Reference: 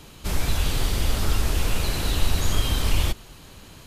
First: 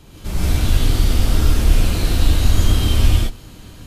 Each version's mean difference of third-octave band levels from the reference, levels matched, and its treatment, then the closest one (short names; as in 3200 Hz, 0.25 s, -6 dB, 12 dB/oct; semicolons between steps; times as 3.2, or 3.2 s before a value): 5.0 dB: low shelf 400 Hz +6.5 dB; non-linear reverb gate 0.19 s rising, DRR -5.5 dB; gain -5 dB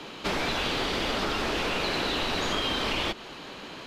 7.0 dB: three-band isolator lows -23 dB, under 210 Hz, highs -23 dB, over 4800 Hz; compressor, threshold -34 dBFS, peak gain reduction 6.5 dB; gain +9 dB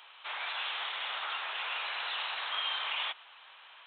21.5 dB: downsampling 8000 Hz; HPF 850 Hz 24 dB/oct; gain -1 dB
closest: first